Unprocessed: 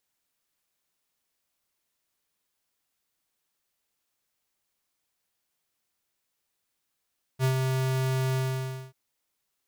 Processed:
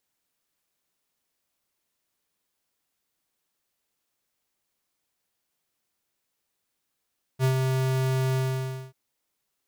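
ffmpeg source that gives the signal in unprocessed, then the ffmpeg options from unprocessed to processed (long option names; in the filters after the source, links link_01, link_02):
-f lavfi -i "aevalsrc='0.075*(2*lt(mod(131*t,1),0.5)-1)':duration=1.537:sample_rate=44100,afade=type=in:duration=0.051,afade=type=out:start_time=0.051:duration=0.095:silence=0.631,afade=type=out:start_time=0.97:duration=0.567"
-af "equalizer=frequency=280:width_type=o:width=2.8:gain=3"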